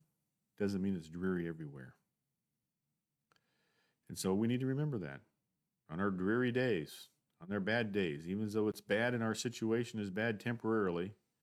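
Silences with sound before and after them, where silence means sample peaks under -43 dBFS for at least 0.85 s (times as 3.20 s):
1.84–4.10 s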